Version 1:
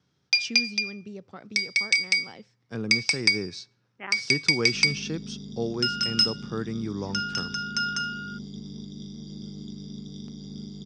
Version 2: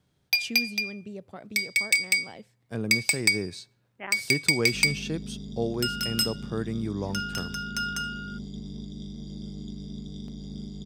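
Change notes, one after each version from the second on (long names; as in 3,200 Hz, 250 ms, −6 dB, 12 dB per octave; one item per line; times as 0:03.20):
master: remove loudspeaker in its box 100–6,400 Hz, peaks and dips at 630 Hz −6 dB, 1,300 Hz +4 dB, 5,500 Hz +9 dB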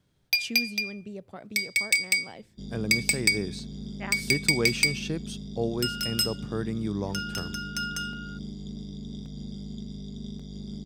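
first sound: remove high-pass with resonance 810 Hz, resonance Q 1.7
second sound: entry −2.15 s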